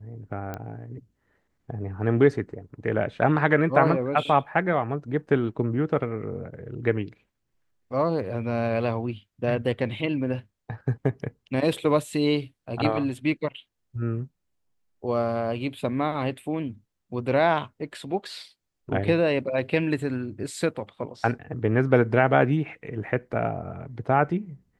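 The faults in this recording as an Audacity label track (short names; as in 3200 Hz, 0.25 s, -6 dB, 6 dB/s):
0.540000	0.540000	pop -19 dBFS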